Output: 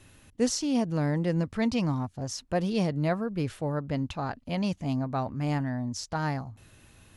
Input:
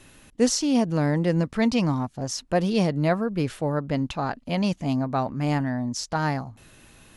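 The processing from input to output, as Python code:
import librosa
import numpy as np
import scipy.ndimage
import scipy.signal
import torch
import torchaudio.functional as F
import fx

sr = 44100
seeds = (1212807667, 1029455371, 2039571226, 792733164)

y = fx.peak_eq(x, sr, hz=89.0, db=9.5, octaves=0.77)
y = y * librosa.db_to_amplitude(-5.5)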